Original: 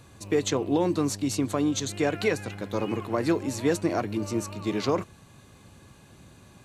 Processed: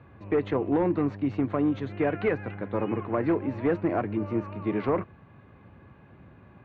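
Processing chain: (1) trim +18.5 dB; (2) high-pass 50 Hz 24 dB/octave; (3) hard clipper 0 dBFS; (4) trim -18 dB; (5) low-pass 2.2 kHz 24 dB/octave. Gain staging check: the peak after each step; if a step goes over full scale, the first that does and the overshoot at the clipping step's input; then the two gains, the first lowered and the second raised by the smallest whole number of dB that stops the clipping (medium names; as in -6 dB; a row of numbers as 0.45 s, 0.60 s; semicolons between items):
+6.0 dBFS, +6.0 dBFS, 0.0 dBFS, -18.0 dBFS, -17.0 dBFS; step 1, 6.0 dB; step 1 +12.5 dB, step 4 -12 dB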